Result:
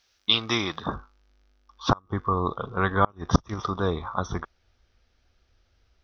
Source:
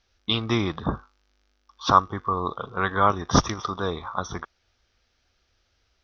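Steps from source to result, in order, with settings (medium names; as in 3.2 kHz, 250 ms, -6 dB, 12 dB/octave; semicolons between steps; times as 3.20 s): tilt EQ +2.5 dB/octave, from 0.94 s -1.5 dB/octave; inverted gate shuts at -6 dBFS, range -31 dB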